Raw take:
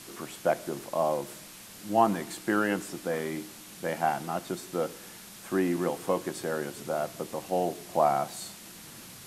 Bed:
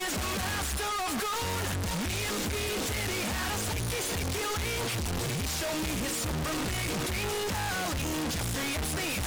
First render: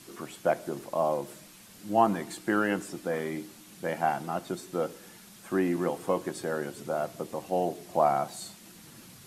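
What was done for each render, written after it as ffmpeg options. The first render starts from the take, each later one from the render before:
-af "afftdn=nr=6:nf=-47"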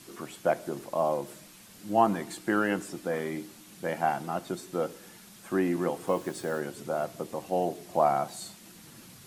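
-filter_complex "[0:a]asettb=1/sr,asplit=3[a][b][c];[a]atrim=end=6.074[d];[b]atrim=start=6.07:end=6.6,asetpts=PTS-STARTPTS,afade=t=in:d=0.004:c=qsin,afade=t=out:st=0.526:d=0.004:c=qsin,acrusher=bits=7:mix=0:aa=0.5[e];[c]atrim=start=6.596[f];[d][e]acrossfade=d=0.004:c1=hsin:c2=qsin[g];[g][f]acrossfade=d=0.004:c1=qsin:c2=hsin"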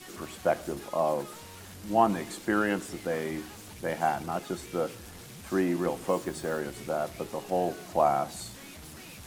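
-filter_complex "[1:a]volume=-16.5dB[a];[0:a][a]amix=inputs=2:normalize=0"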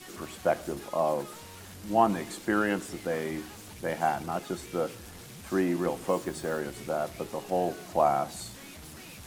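-af anull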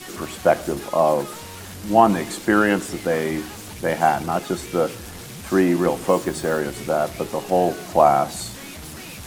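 -af "volume=9.5dB,alimiter=limit=-2dB:level=0:latency=1"

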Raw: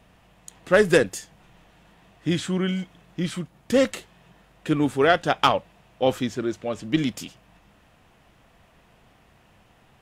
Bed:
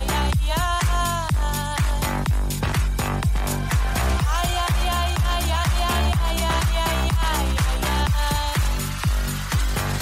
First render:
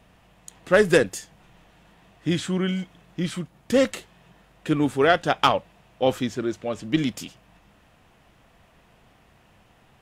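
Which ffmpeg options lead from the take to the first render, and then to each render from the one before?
-af anull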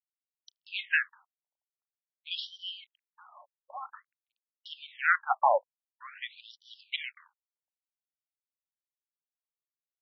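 -af "aresample=16000,aeval=exprs='sgn(val(0))*max(abs(val(0))-0.00562,0)':c=same,aresample=44100,afftfilt=real='re*between(b*sr/1024,720*pow(4200/720,0.5+0.5*sin(2*PI*0.49*pts/sr))/1.41,720*pow(4200/720,0.5+0.5*sin(2*PI*0.49*pts/sr))*1.41)':imag='im*between(b*sr/1024,720*pow(4200/720,0.5+0.5*sin(2*PI*0.49*pts/sr))/1.41,720*pow(4200/720,0.5+0.5*sin(2*PI*0.49*pts/sr))*1.41)':win_size=1024:overlap=0.75"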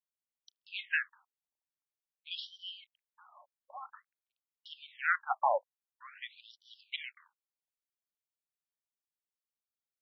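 -af "volume=-5dB"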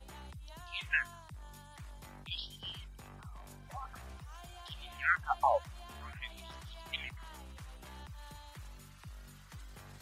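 -filter_complex "[1:a]volume=-28.5dB[a];[0:a][a]amix=inputs=2:normalize=0"

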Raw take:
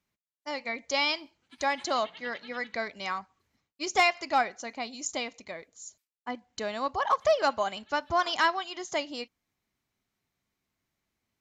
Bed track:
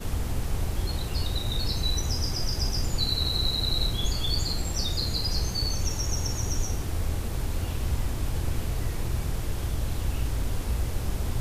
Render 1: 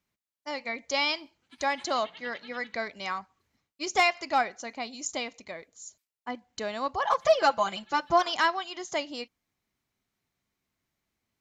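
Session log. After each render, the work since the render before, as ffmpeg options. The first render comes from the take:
-filter_complex "[0:a]asettb=1/sr,asplit=3[a][b][c];[a]atrim=end=7.034[d];[b]atrim=start=7.03:end=8.22,asetpts=PTS-STARTPTS,afade=t=in:d=0.004:c=qsin,afade=t=out:st=1.186:d=0.004:c=qsin,aecho=1:1:5.9:0.94,atrim=end_sample=52479[e];[c]atrim=start=8.216[f];[d][e]acrossfade=d=0.004:c1=hsin:c2=qsin[g];[g][f]acrossfade=d=0.004:c1=qsin:c2=hsin"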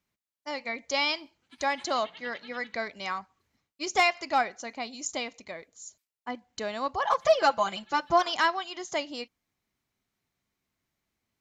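-af anull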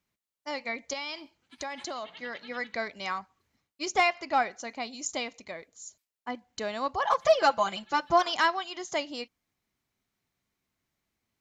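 -filter_complex "[0:a]asettb=1/sr,asplit=3[a][b][c];[a]atrim=end=0.934[d];[b]atrim=start=0.93:end=2.44,asetpts=PTS-STARTPTS,afade=t=in:d=0.004:c=qsin,afade=t=out:st=1.506:d=0.004:c=qsin,acompressor=threshold=-32dB:ratio=10:attack=3.2:release=140:knee=1:detection=peak[e];[c]atrim=start=2.436[f];[d][e]acrossfade=d=0.004:c1=hsin:c2=qsin[g];[g][f]acrossfade=d=0.004:c1=qsin:c2=hsin,asettb=1/sr,asplit=3[h][i][j];[h]atrim=end=3.924[k];[i]atrim=start=3.92:end=4.42,asetpts=PTS-STARTPTS,afade=t=in:d=0.004:c=qsin,afade=t=out:st=0.496:d=0.004:c=qsin,lowpass=f=3.3k:p=1[l];[j]atrim=start=4.416[m];[k][l]acrossfade=d=0.004:c1=hsin:c2=qsin[n];[n][m]acrossfade=d=0.004:c1=qsin:c2=hsin"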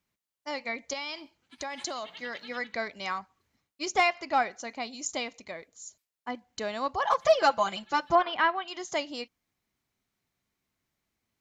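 -filter_complex "[0:a]asettb=1/sr,asplit=3[a][b][c];[a]atrim=end=1.734[d];[b]atrim=start=1.73:end=2.59,asetpts=PTS-STARTPTS,afade=t=in:d=0.004:c=qsin,afade=t=out:st=0.856:d=0.004:c=qsin,highshelf=f=5.5k:g=9.5[e];[c]atrim=start=2.586[f];[d][e]acrossfade=d=0.004:c1=hsin:c2=qsin[g];[g][f]acrossfade=d=0.004:c1=qsin:c2=hsin,asettb=1/sr,asplit=3[h][i][j];[h]atrim=end=8.154[k];[i]atrim=start=8.15:end=8.68,asetpts=PTS-STARTPTS,afade=t=in:d=0.004:c=qsin,afade=t=out:st=0.526:d=0.004:c=qsin,lowpass=f=3k:w=0.5412,lowpass=f=3k:w=1.3066[l];[j]atrim=start=8.676[m];[k][l]acrossfade=d=0.004:c1=hsin:c2=qsin[n];[n][m]acrossfade=d=0.004:c1=qsin:c2=hsin"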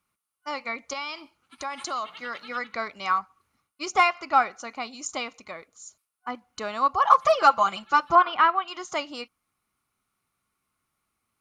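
-af "superequalizer=9b=1.58:10b=3.55:12b=1.41:16b=3.16"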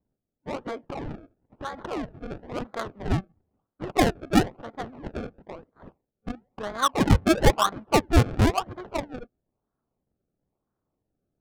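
-af "acrusher=samples=31:mix=1:aa=0.000001:lfo=1:lforange=31:lforate=1,adynamicsmooth=sensitivity=2:basefreq=950"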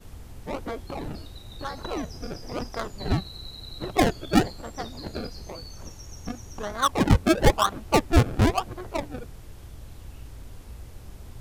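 -filter_complex "[1:a]volume=-14dB[a];[0:a][a]amix=inputs=2:normalize=0"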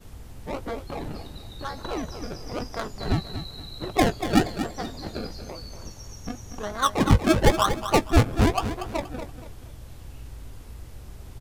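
-filter_complex "[0:a]asplit=2[a][b];[b]adelay=19,volume=-13dB[c];[a][c]amix=inputs=2:normalize=0,aecho=1:1:237|474|711|948:0.316|0.104|0.0344|0.0114"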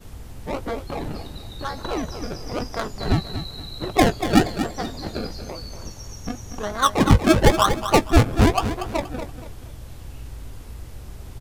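-af "volume=4dB,alimiter=limit=-3dB:level=0:latency=1"

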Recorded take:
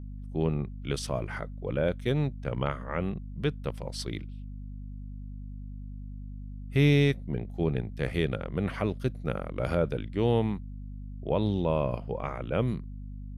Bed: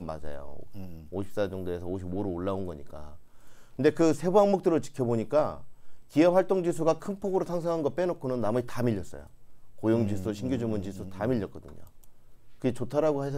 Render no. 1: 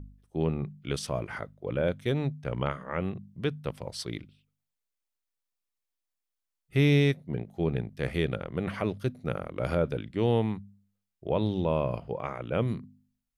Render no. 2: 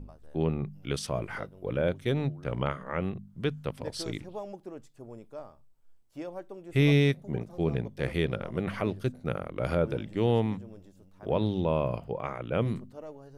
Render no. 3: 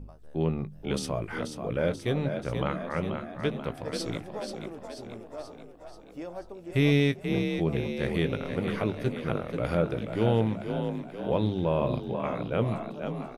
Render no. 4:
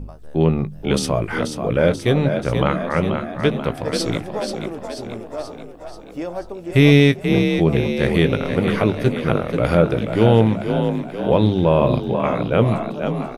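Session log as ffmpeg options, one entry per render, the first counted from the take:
-af "bandreject=f=50:t=h:w=4,bandreject=f=100:t=h:w=4,bandreject=f=150:t=h:w=4,bandreject=f=200:t=h:w=4,bandreject=f=250:t=h:w=4"
-filter_complex "[1:a]volume=-18dB[a];[0:a][a]amix=inputs=2:normalize=0"
-filter_complex "[0:a]asplit=2[a][b];[b]adelay=18,volume=-12dB[c];[a][c]amix=inputs=2:normalize=0,asplit=8[d][e][f][g][h][i][j][k];[e]adelay=484,afreqshift=40,volume=-7dB[l];[f]adelay=968,afreqshift=80,volume=-12dB[m];[g]adelay=1452,afreqshift=120,volume=-17.1dB[n];[h]adelay=1936,afreqshift=160,volume=-22.1dB[o];[i]adelay=2420,afreqshift=200,volume=-27.1dB[p];[j]adelay=2904,afreqshift=240,volume=-32.2dB[q];[k]adelay=3388,afreqshift=280,volume=-37.2dB[r];[d][l][m][n][o][p][q][r]amix=inputs=8:normalize=0"
-af "volume=11dB,alimiter=limit=-2dB:level=0:latency=1"

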